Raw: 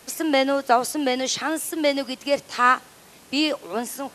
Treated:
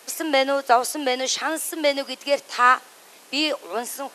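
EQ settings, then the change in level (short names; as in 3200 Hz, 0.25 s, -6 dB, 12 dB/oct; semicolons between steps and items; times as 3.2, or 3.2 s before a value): HPF 390 Hz 12 dB/oct; +1.5 dB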